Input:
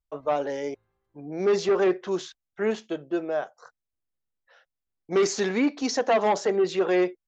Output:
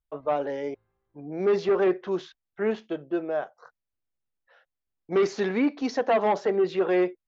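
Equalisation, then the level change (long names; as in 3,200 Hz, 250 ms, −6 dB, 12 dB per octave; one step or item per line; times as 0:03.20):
high-frequency loss of the air 200 metres
0.0 dB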